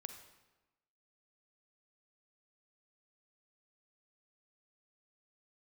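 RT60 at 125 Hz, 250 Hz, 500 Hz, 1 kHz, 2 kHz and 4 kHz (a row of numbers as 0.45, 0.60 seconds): 1.1, 1.2, 1.1, 1.1, 1.0, 0.85 seconds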